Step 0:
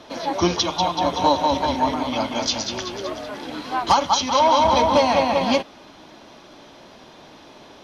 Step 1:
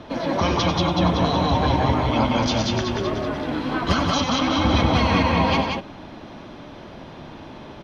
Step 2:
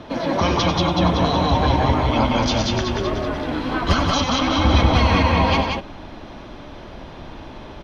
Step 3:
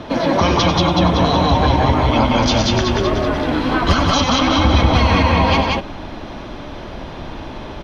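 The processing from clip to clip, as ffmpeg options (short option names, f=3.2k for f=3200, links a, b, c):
-af "afftfilt=real='re*lt(hypot(re,im),0.447)':imag='im*lt(hypot(re,im),0.447)':win_size=1024:overlap=0.75,bass=f=250:g=10,treble=f=4k:g=-12,aecho=1:1:93.29|180.8:0.355|0.631,volume=2.5dB"
-af "asubboost=boost=3.5:cutoff=71,volume=2dB"
-af "acompressor=threshold=-19dB:ratio=2,volume=6.5dB"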